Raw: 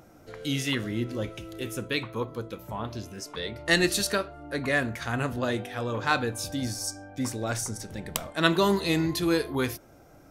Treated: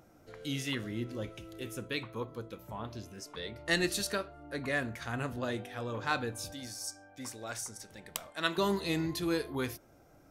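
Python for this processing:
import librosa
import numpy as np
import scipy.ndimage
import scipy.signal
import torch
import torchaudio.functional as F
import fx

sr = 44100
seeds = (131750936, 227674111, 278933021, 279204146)

y = fx.low_shelf(x, sr, hz=420.0, db=-11.0, at=(6.53, 8.58))
y = F.gain(torch.from_numpy(y), -7.0).numpy()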